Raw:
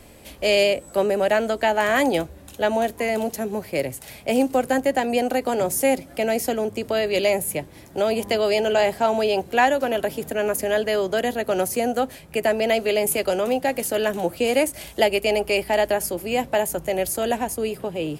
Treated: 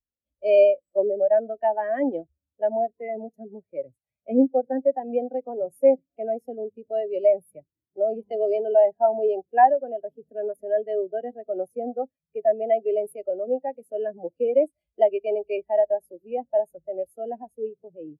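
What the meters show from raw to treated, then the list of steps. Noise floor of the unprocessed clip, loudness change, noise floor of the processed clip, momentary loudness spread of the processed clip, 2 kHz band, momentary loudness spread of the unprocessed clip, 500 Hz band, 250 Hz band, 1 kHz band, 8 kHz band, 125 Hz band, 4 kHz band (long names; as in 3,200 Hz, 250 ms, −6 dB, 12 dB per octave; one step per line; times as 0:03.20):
−45 dBFS, −2.0 dB, below −85 dBFS, 15 LU, −16.0 dB, 7 LU, −1.0 dB, −5.0 dB, −2.0 dB, below −30 dB, below −15 dB, below −25 dB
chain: every bin expanded away from the loudest bin 2.5 to 1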